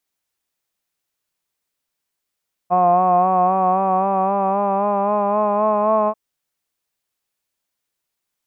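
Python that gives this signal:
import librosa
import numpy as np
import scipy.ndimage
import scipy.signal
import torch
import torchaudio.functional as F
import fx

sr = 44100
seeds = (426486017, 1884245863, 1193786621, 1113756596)

y = fx.formant_vowel(sr, seeds[0], length_s=3.44, hz=177.0, glide_st=3.5, vibrato_hz=3.8, vibrato_st=0.4, f1_hz=700.0, f2_hz=1100.0, f3_hz=2500.0)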